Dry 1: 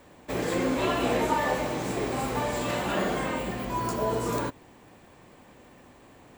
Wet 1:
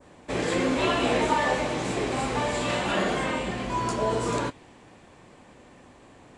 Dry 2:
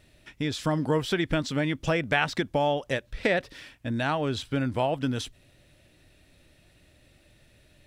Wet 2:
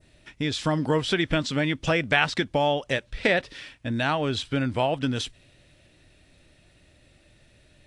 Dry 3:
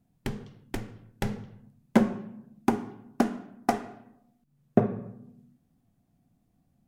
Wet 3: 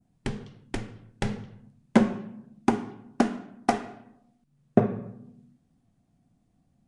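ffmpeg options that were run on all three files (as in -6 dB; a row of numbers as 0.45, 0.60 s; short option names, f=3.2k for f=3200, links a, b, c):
-af "adynamicequalizer=threshold=0.00562:dfrequency=3100:dqfactor=0.77:tfrequency=3100:tqfactor=0.77:attack=5:release=100:ratio=0.375:range=2:mode=boostabove:tftype=bell,volume=1.5dB" -ar 22050 -c:a aac -b:a 64k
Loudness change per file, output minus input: +2.0, +2.5, +1.5 LU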